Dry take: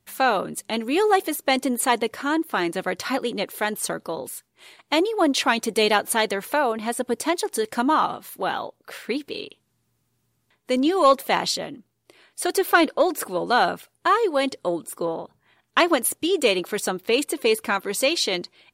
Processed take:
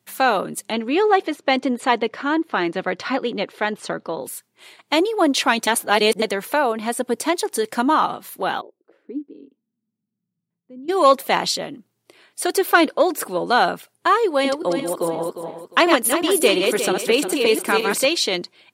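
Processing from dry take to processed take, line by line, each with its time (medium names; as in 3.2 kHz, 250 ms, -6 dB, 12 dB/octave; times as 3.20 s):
0.72–4.21 s: low-pass 4 kHz
5.67–6.22 s: reverse
8.60–10.88 s: band-pass filter 390 Hz -> 140 Hz, Q 5.9
14.27–18.05 s: backward echo that repeats 177 ms, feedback 51%, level -4 dB
whole clip: high-pass 120 Hz 24 dB/octave; trim +2.5 dB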